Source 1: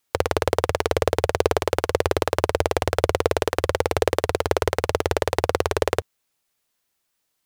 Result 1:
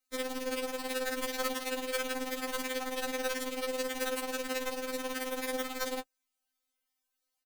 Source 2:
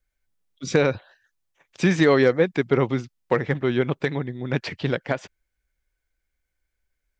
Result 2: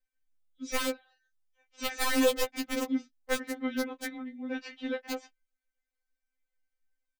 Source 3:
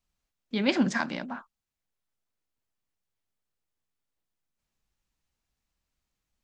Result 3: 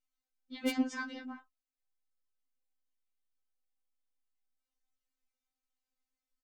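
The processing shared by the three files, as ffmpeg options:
-filter_complex "[0:a]asplit=2[a][b];[b]adelay=18,volume=-10.5dB[c];[a][c]amix=inputs=2:normalize=0,aeval=exprs='(mod(2.82*val(0)+1,2)-1)/2.82':c=same,afftfilt=real='re*3.46*eq(mod(b,12),0)':imag='im*3.46*eq(mod(b,12),0)':win_size=2048:overlap=0.75,volume=-8dB"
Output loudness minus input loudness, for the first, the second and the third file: -11.5, -9.5, -8.0 LU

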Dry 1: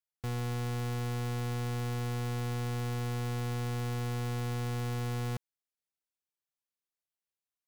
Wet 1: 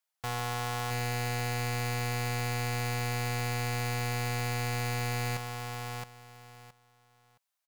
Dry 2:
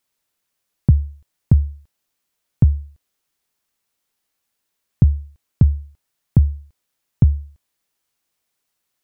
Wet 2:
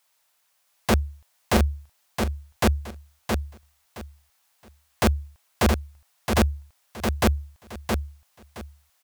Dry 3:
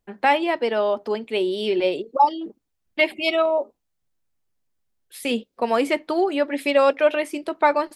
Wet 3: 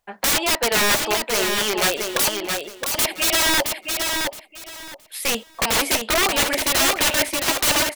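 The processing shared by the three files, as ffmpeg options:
-filter_complex "[0:a]lowshelf=f=500:t=q:w=1.5:g=-11,aeval=exprs='(mod(11.2*val(0)+1,2)-1)/11.2':c=same,asplit=2[a][b];[b]aecho=0:1:669|1338|2007:0.562|0.118|0.0248[c];[a][c]amix=inputs=2:normalize=0,volume=7.5dB"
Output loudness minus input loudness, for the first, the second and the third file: +2.5, -6.5, +2.5 LU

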